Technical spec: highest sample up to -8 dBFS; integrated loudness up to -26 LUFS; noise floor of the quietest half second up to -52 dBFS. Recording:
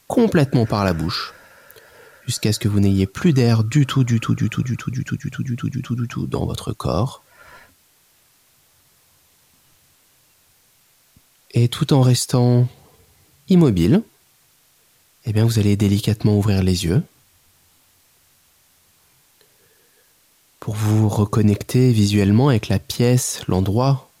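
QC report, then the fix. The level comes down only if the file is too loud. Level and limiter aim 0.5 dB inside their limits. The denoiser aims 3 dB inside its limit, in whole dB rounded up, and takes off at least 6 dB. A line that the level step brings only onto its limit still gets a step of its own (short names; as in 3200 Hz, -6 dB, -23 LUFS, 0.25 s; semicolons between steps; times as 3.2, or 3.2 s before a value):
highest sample -5.5 dBFS: fail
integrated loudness -18.5 LUFS: fail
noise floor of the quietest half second -58 dBFS: OK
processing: gain -8 dB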